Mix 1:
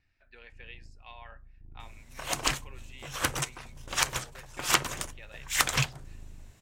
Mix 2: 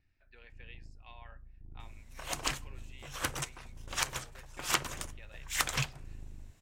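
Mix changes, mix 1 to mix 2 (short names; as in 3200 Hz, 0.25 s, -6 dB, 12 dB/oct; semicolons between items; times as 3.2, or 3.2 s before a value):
speech -5.5 dB; second sound -6.0 dB; reverb: on, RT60 1.4 s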